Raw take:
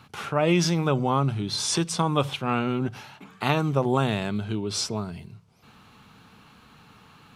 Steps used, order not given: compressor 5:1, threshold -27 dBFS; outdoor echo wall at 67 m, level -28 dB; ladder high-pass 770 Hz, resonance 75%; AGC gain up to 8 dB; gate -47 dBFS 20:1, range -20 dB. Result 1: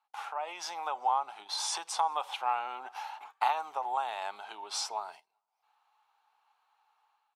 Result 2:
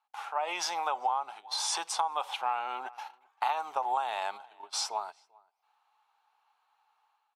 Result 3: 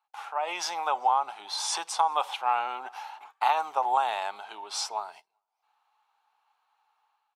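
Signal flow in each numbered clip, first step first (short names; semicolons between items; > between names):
compressor > ladder high-pass > AGC > outdoor echo > gate; ladder high-pass > gate > AGC > outdoor echo > compressor; ladder high-pass > compressor > AGC > outdoor echo > gate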